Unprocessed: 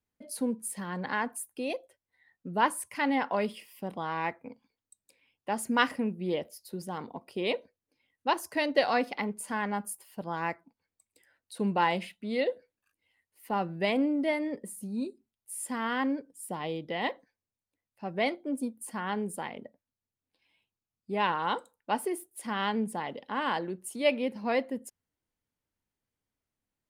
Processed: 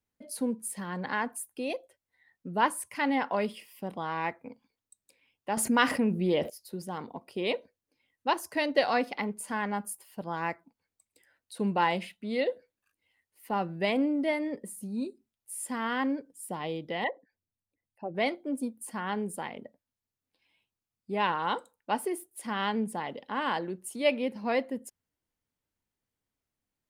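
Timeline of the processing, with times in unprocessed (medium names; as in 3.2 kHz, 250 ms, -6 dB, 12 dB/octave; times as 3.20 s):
5.57–6.50 s: level flattener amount 50%
17.04–18.15 s: resonances exaggerated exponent 2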